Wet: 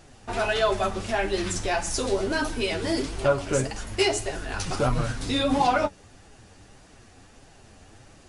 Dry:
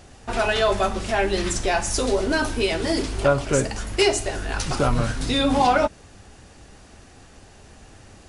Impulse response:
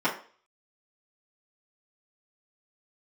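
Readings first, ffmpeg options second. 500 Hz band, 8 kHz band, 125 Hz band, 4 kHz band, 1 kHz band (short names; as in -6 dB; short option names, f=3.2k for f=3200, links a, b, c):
-3.5 dB, -4.0 dB, -3.5 dB, -3.5 dB, -3.5 dB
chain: -af "flanger=delay=5.8:depth=5.5:regen=31:speed=1.6:shape=triangular"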